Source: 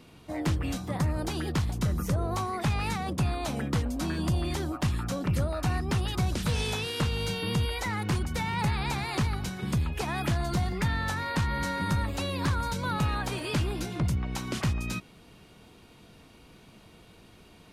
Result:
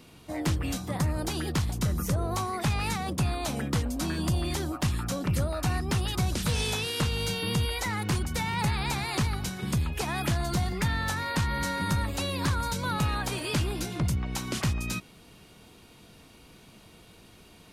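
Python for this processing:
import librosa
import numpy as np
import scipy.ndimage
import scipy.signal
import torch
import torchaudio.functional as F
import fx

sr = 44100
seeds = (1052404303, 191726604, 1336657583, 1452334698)

y = fx.high_shelf(x, sr, hz=4500.0, db=6.5)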